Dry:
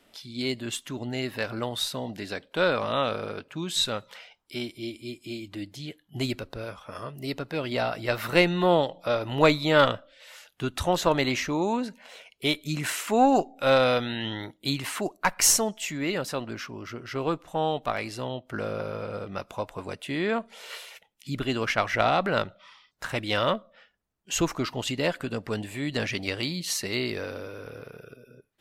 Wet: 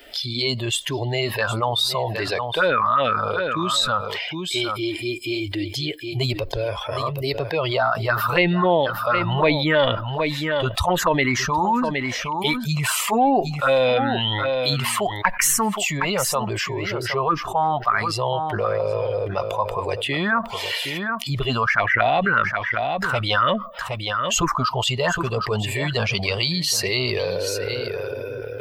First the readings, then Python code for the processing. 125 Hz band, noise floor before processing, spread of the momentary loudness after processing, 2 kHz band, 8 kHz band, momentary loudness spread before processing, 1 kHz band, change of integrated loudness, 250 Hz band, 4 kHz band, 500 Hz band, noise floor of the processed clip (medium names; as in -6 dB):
+8.0 dB, -65 dBFS, 8 LU, +8.0 dB, +3.5 dB, 17 LU, +8.0 dB, +5.5 dB, +3.0 dB, +7.0 dB, +4.5 dB, -31 dBFS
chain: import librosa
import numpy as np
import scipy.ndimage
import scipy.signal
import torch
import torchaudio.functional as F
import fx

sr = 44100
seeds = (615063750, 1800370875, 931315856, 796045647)

p1 = fx.bin_expand(x, sr, power=1.5)
p2 = fx.peak_eq(p1, sr, hz=1200.0, db=15.0, octaves=1.8)
p3 = fx.env_phaser(p2, sr, low_hz=190.0, high_hz=1300.0, full_db=-13.5)
p4 = p3 + fx.echo_single(p3, sr, ms=766, db=-16.5, dry=0)
p5 = fx.env_flatten(p4, sr, amount_pct=70)
y = p5 * librosa.db_to_amplitude(-2.0)